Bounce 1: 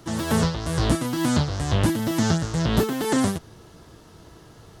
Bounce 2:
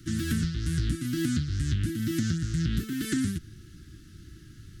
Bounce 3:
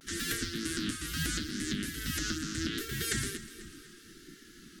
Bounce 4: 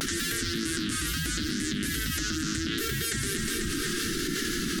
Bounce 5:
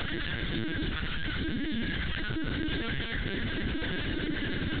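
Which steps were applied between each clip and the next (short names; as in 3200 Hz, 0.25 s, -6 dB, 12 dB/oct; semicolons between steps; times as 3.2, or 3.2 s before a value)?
elliptic band-stop 330–1500 Hz, stop band 50 dB; low shelf 150 Hz +8.5 dB; compressor, threshold -21 dBFS, peak gain reduction 10 dB; gain -3 dB
vibrato 0.75 Hz 77 cents; split-band echo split 310 Hz, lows 0.465 s, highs 0.247 s, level -15.5 dB; spectral gate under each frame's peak -10 dB weak; gain +4 dB
fast leveller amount 100%
LPC vocoder at 8 kHz pitch kept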